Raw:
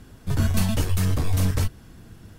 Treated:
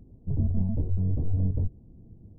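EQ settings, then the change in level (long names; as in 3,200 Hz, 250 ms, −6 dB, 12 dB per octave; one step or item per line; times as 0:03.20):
Gaussian smoothing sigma 16 samples
−3.5 dB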